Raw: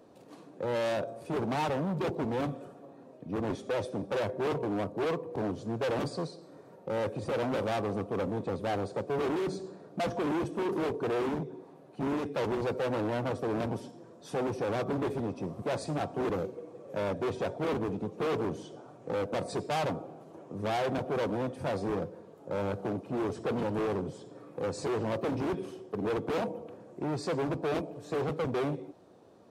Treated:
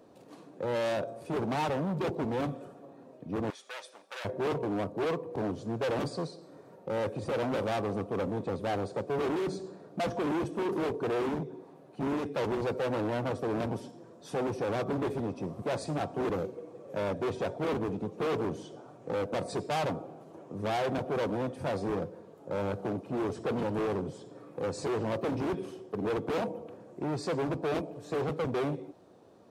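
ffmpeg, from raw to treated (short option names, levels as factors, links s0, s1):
-filter_complex "[0:a]asettb=1/sr,asplit=3[s0][s1][s2];[s0]atrim=end=3.504[s3];[s1]atrim=start=3.5:end=4.25,asetpts=PTS-STARTPTS,afade=t=in:d=0.004:c=qsin,afade=t=out:st=0.746:d=0.004:c=qsin,highpass=1400[s4];[s2]atrim=start=4.246[s5];[s3][s4]acrossfade=d=0.004:c1=hsin:c2=qsin[s6];[s6][s5]acrossfade=d=0.004:c1=qsin:c2=hsin"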